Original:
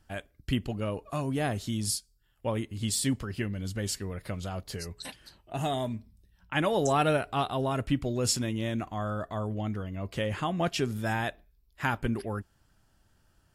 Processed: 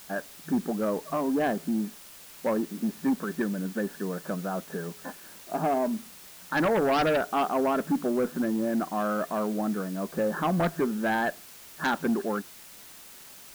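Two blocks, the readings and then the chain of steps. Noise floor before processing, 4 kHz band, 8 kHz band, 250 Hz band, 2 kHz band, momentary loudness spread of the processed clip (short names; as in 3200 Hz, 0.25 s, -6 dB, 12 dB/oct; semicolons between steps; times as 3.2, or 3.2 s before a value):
-68 dBFS, -5.5 dB, -8.0 dB, +5.0 dB, +3.0 dB, 18 LU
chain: FFT band-pass 160–1800 Hz; added harmonics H 3 -15 dB, 5 -9 dB, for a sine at -15 dBFS; requantised 8-bit, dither triangular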